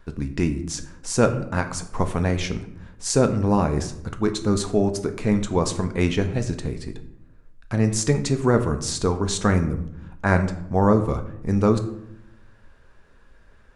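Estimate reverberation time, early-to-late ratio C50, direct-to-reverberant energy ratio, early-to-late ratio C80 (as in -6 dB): 0.75 s, 11.5 dB, 7.0 dB, 14.0 dB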